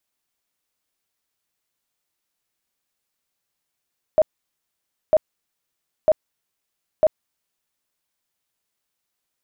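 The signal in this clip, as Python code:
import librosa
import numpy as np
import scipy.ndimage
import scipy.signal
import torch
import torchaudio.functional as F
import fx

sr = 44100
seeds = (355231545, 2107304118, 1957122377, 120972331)

y = fx.tone_burst(sr, hz=625.0, cycles=24, every_s=0.95, bursts=4, level_db=-10.5)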